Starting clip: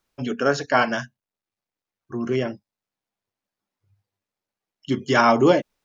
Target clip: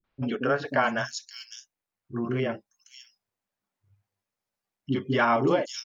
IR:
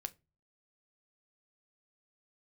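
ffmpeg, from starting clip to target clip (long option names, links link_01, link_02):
-filter_complex "[0:a]acrossover=split=340|3900[link_01][link_02][link_03];[link_02]adelay=40[link_04];[link_03]adelay=590[link_05];[link_01][link_04][link_05]amix=inputs=3:normalize=0,acompressor=threshold=-23dB:ratio=2"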